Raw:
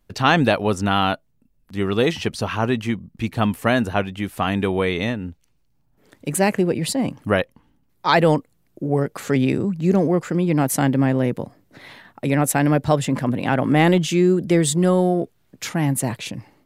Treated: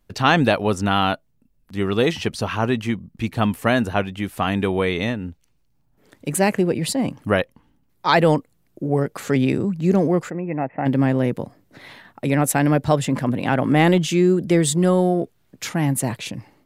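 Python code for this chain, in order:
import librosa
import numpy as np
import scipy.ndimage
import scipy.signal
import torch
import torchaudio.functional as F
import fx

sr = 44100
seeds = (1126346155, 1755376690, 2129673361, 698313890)

y = fx.cheby_ripple(x, sr, hz=2700.0, ripple_db=9, at=(10.29, 10.85), fade=0.02)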